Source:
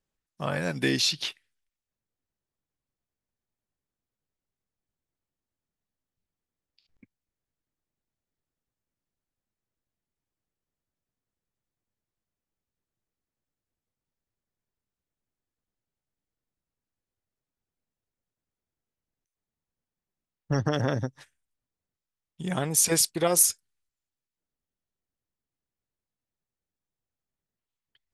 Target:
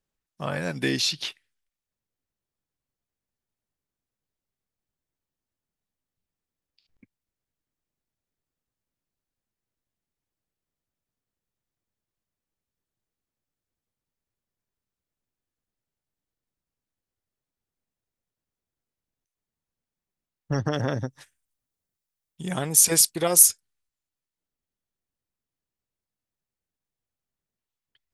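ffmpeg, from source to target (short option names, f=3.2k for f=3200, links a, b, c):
-filter_complex "[0:a]asettb=1/sr,asplit=3[a][b][c];[a]atrim=end=21.104[d];[b]atrim=start=21.1:end=23.48,asetpts=PTS-STARTPTS,afade=t=in:d=0.004:c=qsin,afade=t=out:st=2.376:d=0.004:c=qsin,highshelf=f=6.7k:g=8.5[e];[c]atrim=start=23.476[f];[d][e]acrossfade=d=0.004:c1=hsin:c2=qsin[g];[g][f]acrossfade=d=0.004:c1=qsin:c2=hsin"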